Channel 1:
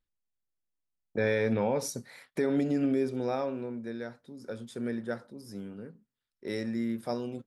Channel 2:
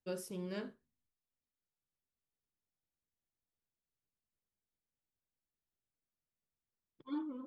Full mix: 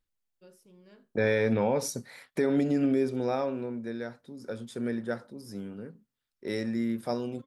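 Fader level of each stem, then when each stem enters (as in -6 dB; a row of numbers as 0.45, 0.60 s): +2.0, -14.5 dB; 0.00, 0.35 s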